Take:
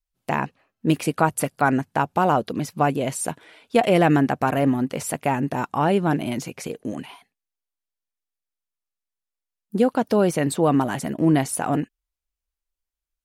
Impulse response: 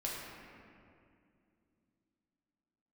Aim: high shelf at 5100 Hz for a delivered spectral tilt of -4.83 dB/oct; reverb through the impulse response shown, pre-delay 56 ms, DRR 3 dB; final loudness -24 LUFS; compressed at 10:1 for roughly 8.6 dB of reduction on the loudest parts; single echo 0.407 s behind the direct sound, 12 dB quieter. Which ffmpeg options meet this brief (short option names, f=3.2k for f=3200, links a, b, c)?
-filter_complex "[0:a]highshelf=f=5.1k:g=8,acompressor=threshold=-21dB:ratio=10,aecho=1:1:407:0.251,asplit=2[a][b];[1:a]atrim=start_sample=2205,adelay=56[c];[b][c]afir=irnorm=-1:irlink=0,volume=-5.5dB[d];[a][d]amix=inputs=2:normalize=0,volume=1.5dB"